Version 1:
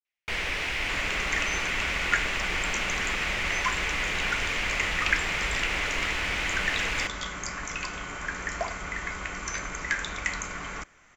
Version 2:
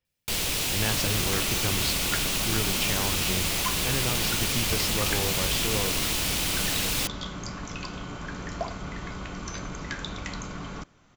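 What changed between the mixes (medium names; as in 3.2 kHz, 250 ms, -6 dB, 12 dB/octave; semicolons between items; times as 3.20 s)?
speech: unmuted; first sound: remove distance through air 260 m; master: add graphic EQ 125/250/2000/4000/8000 Hz +9/+5/-12/+6/-10 dB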